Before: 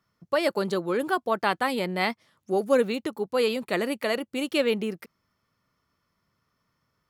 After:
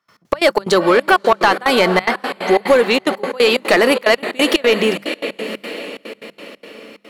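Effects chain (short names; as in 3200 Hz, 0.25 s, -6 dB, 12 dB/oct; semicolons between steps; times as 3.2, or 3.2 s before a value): compressor, threshold -30 dBFS, peak gain reduction 13 dB; on a send: diffused feedback echo 0.578 s, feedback 49%, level -11 dB; on the sum: step gate ".x.x.xx.xxxx" 181 bpm -24 dB; notches 50/100/150/200 Hz; overdrive pedal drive 25 dB, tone 4900 Hz, clips at -6.5 dBFS; gain +8 dB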